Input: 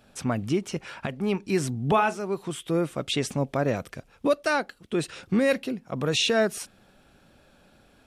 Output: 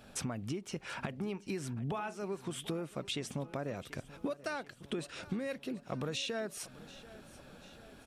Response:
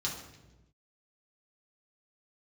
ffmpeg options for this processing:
-af "acompressor=threshold=-37dB:ratio=10,aecho=1:1:736|1472|2208|2944|3680:0.126|0.073|0.0424|0.0246|0.0142,volume=2dB"

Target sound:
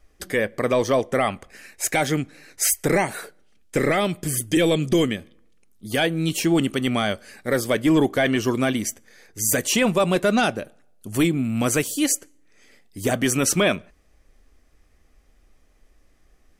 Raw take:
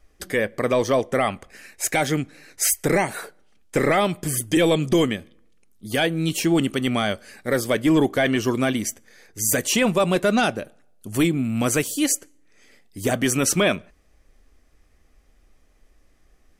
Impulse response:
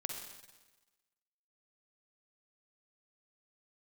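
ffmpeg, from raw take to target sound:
-filter_complex "[0:a]asettb=1/sr,asplit=3[link_01][link_02][link_03];[link_01]atrim=end=3.164[link_04];[link_02]atrim=start=3.16:end=5.17,asetpts=PTS-STARTPTS,afade=type=in:duration=0.004:curve=qsin,afade=type=out:start_time=2.006:duration=0.004:curve=qsin,equalizer=frequency=930:width_type=o:width=0.99:gain=-5[link_05];[link_03]atrim=start=5.166[link_06];[link_04][link_05]acrossfade=duration=0.004:curve1=hsin:curve2=qsin[link_07];[link_07][link_06]acrossfade=duration=0.004:curve1=qsin:curve2=hsin"

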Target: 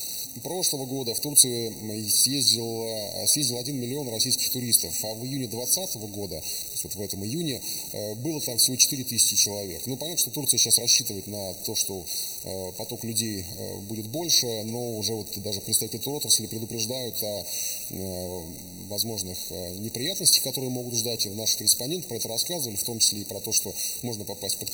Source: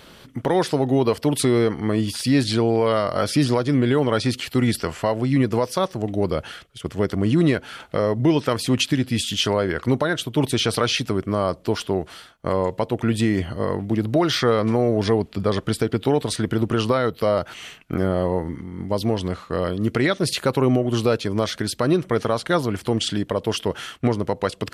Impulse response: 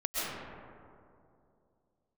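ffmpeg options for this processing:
-filter_complex "[0:a]aeval=exprs='val(0)+0.5*0.0237*sgn(val(0))':channel_layout=same,aexciter=amount=14.5:drive=6:freq=3500,asplit=2[link_01][link_02];[1:a]atrim=start_sample=2205[link_03];[link_02][link_03]afir=irnorm=-1:irlink=0,volume=-25.5dB[link_04];[link_01][link_04]amix=inputs=2:normalize=0,afftfilt=real='re*eq(mod(floor(b*sr/1024/940),2),0)':imag='im*eq(mod(floor(b*sr/1024/940),2),0)':win_size=1024:overlap=0.75,volume=-13.5dB"

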